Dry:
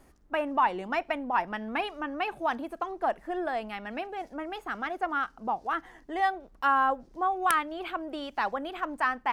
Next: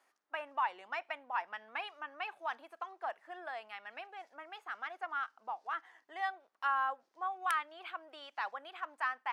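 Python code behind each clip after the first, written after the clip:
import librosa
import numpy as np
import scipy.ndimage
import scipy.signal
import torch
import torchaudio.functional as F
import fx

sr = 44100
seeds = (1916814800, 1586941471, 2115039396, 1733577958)

y = scipy.signal.sosfilt(scipy.signal.butter(2, 940.0, 'highpass', fs=sr, output='sos'), x)
y = fx.high_shelf(y, sr, hz=8300.0, db=-12.0)
y = F.gain(torch.from_numpy(y), -6.0).numpy()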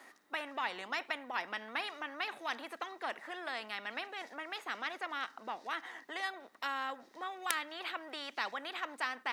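y = fx.small_body(x, sr, hz=(240.0, 1900.0, 3800.0), ring_ms=20, db=10)
y = fx.spectral_comp(y, sr, ratio=2.0)
y = F.gain(torch.from_numpy(y), 7.0).numpy()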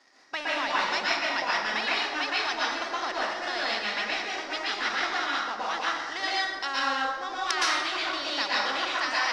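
y = fx.leveller(x, sr, passes=2)
y = fx.lowpass_res(y, sr, hz=5300.0, q=4.6)
y = fx.rev_plate(y, sr, seeds[0], rt60_s=1.2, hf_ratio=0.6, predelay_ms=105, drr_db=-6.5)
y = F.gain(torch.from_numpy(y), -4.0).numpy()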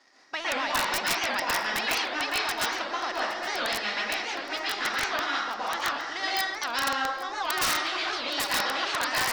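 y = (np.mod(10.0 ** (17.5 / 20.0) * x + 1.0, 2.0) - 1.0) / 10.0 ** (17.5 / 20.0)
y = y + 10.0 ** (-17.5 / 20.0) * np.pad(y, (int(817 * sr / 1000.0), 0))[:len(y)]
y = fx.record_warp(y, sr, rpm=78.0, depth_cents=250.0)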